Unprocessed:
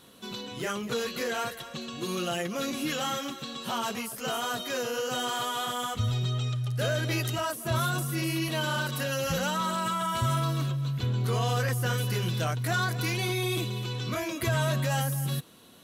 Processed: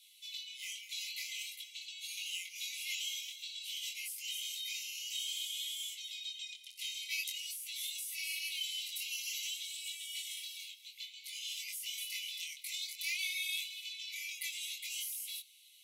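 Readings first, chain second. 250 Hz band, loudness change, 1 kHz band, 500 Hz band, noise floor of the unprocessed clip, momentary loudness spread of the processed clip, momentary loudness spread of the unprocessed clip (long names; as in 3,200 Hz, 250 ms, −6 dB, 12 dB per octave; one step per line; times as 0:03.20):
below −40 dB, −9.5 dB, below −40 dB, below −40 dB, −43 dBFS, 7 LU, 6 LU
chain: linear-phase brick-wall high-pass 2,000 Hz
chorus effect 0.51 Hz, delay 18.5 ms, depth 5.6 ms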